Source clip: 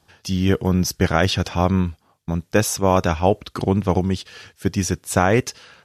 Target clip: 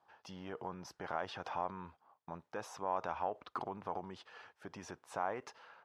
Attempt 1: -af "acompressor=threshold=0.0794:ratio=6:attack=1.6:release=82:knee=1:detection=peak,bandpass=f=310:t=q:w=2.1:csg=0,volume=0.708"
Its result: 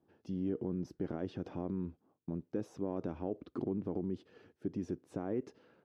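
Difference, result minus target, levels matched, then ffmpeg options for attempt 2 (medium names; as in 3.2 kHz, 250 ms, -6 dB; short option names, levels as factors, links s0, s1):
1 kHz band -15.5 dB
-af "acompressor=threshold=0.0794:ratio=6:attack=1.6:release=82:knee=1:detection=peak,bandpass=f=920:t=q:w=2.1:csg=0,volume=0.708"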